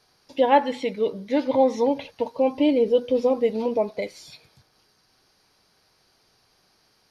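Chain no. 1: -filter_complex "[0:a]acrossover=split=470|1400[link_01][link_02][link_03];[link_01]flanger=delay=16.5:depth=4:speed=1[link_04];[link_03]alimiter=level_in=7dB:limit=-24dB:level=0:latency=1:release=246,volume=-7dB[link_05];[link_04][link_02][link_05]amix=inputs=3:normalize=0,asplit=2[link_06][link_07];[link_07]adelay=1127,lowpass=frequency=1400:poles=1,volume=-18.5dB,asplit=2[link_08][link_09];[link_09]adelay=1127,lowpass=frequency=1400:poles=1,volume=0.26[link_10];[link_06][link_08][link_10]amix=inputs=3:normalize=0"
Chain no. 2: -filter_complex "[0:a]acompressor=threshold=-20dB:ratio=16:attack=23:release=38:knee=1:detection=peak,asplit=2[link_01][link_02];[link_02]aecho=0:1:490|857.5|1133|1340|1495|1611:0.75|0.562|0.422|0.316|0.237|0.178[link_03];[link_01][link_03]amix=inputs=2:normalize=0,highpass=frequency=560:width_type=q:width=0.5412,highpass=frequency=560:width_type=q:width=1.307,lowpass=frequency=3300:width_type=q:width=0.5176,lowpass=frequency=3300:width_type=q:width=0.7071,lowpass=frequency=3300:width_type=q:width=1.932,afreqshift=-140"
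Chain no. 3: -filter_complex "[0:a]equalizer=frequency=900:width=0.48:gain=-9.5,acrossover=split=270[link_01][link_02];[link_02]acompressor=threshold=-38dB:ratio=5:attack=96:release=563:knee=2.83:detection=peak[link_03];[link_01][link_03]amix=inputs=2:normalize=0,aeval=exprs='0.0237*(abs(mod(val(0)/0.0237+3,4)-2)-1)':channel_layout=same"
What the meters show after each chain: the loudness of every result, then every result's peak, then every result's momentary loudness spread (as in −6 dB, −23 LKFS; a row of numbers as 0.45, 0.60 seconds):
−24.5, −27.0, −40.0 LKFS; −7.0, −11.5, −32.5 dBFS; 16, 10, 6 LU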